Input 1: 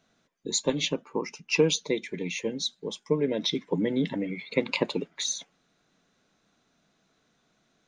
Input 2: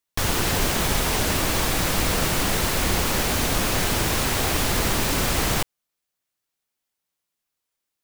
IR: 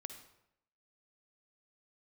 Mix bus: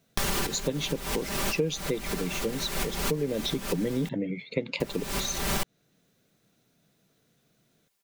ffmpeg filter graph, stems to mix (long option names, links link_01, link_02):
-filter_complex "[0:a]equalizer=frequency=125:width_type=o:width=1:gain=10,equalizer=frequency=500:width_type=o:width=1:gain=5,equalizer=frequency=1000:width_type=o:width=1:gain=-8,volume=-2dB,asplit=2[link_01][link_02];[1:a]aecho=1:1:5.1:0.87,alimiter=limit=-15.5dB:level=0:latency=1:release=465,acontrast=57,volume=-2dB,asplit=3[link_03][link_04][link_05];[link_03]atrim=end=4.09,asetpts=PTS-STARTPTS,afade=type=out:start_time=4.086:duration=0.004:curve=hsin[link_06];[link_04]atrim=start=4.09:end=4.8,asetpts=PTS-STARTPTS,volume=0[link_07];[link_05]atrim=start=4.8,asetpts=PTS-STARTPTS,afade=type=in:duration=0.004:curve=hsin[link_08];[link_06][link_07][link_08]concat=n=3:v=0:a=1[link_09];[link_02]apad=whole_len=354735[link_10];[link_09][link_10]sidechaincompress=threshold=-44dB:ratio=5:attack=21:release=188[link_11];[link_01][link_11]amix=inputs=2:normalize=0,acompressor=threshold=-25dB:ratio=3"